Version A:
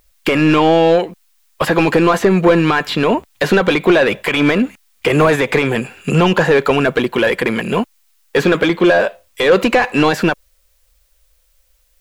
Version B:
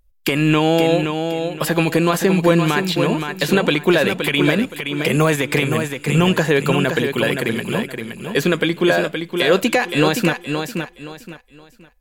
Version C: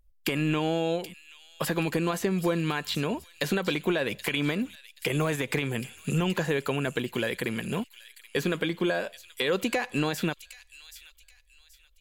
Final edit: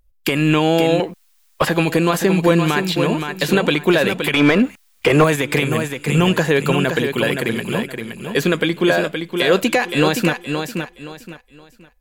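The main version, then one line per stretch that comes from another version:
B
0:01.00–0:01.69: punch in from A
0:04.34–0:05.24: punch in from A
not used: C

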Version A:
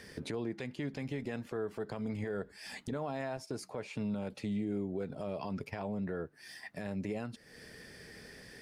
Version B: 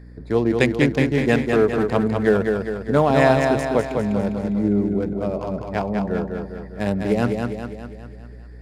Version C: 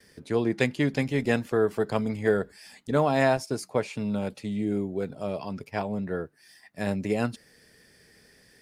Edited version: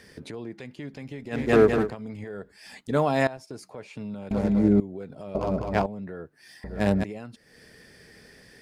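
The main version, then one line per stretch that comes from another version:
A
0:01.42–0:01.84: punch in from B, crossfade 0.24 s
0:02.81–0:03.27: punch in from C
0:04.31–0:04.80: punch in from B
0:05.35–0:05.86: punch in from B
0:06.64–0:07.04: punch in from B

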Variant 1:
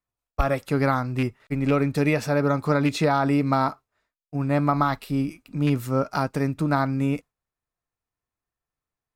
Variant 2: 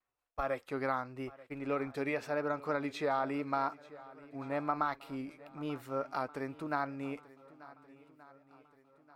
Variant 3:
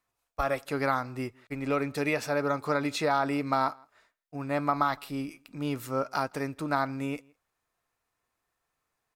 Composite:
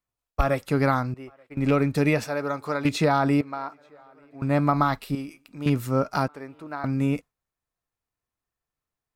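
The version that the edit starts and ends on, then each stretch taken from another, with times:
1
0:01.14–0:01.57: punch in from 2
0:02.24–0:02.85: punch in from 3
0:03.41–0:04.42: punch in from 2
0:05.15–0:05.66: punch in from 3
0:06.28–0:06.84: punch in from 2

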